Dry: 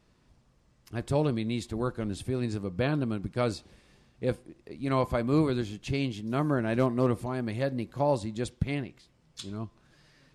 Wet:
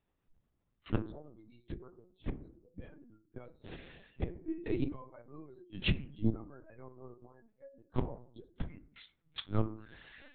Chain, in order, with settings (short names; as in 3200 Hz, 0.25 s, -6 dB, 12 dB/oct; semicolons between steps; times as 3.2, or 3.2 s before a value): flipped gate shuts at -26 dBFS, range -34 dB; spectral noise reduction 26 dB; on a send at -7 dB: reverb RT60 0.55 s, pre-delay 3 ms; on the sum: LPC vocoder at 8 kHz pitch kept; gain +9 dB